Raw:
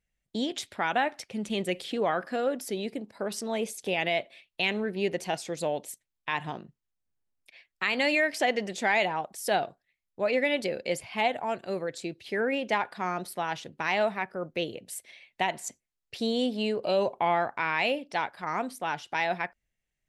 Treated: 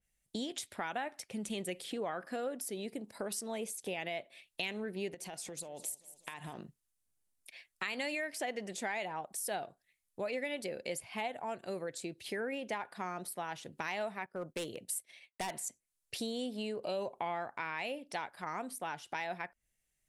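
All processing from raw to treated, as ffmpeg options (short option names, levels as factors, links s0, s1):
-filter_complex "[0:a]asettb=1/sr,asplit=3[s0][s1][s2];[s0]atrim=end=5.144[s3];[s1]atrim=start=5.14:end=6.59,asetpts=PTS-STARTPTS,afade=t=in:d=0.004:c=qsin,afade=t=out:st=1.446:d=0.004:c=qsin,acompressor=threshold=0.0126:ratio=12:attack=3.2:release=140:knee=1:detection=peak,aecho=1:1:196|392|588|784:0.106|0.0572|0.0309|0.0167,atrim=end_sample=63945[s4];[s2]atrim=start=6.586[s5];[s3][s4]acrossfade=d=0.004:c1=hsin:c2=qsin[s6];[s6][s5]acrossfade=d=0.004:c1=qsin:c2=hsin,asettb=1/sr,asplit=3[s7][s8][s9];[s7]atrim=end=14.264[s10];[s8]atrim=start=14.26:end=15.6,asetpts=PTS-STARTPTS,afade=t=in:d=0.004:c=qsin,afade=t=out:st=1.336:d=0.004:c=qsin,agate=range=0.0224:threshold=0.00355:ratio=3:release=100:detection=peak,volume=23.7,asoftclip=hard,volume=0.0422[s11];[s9]atrim=start=15.596[s12];[s10][s11]acrossfade=d=0.004:c1=hsin:c2=qsin[s13];[s13][s12]acrossfade=d=0.004:c1=qsin:c2=hsin,equalizer=f=10000:t=o:w=1.2:g=14,acompressor=threshold=0.0126:ratio=2.5,adynamicequalizer=threshold=0.00282:dfrequency=2700:dqfactor=0.7:tfrequency=2700:tqfactor=0.7:attack=5:release=100:ratio=0.375:range=3.5:mode=cutabove:tftype=highshelf,volume=0.891"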